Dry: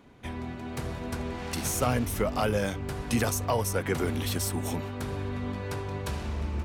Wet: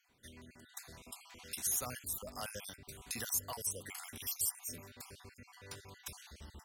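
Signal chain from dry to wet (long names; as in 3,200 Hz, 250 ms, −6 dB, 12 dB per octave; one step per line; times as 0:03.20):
time-frequency cells dropped at random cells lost 49%
first-order pre-emphasis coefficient 0.9
0:03.53–0:04.15: upward compression, threshold −42 dBFS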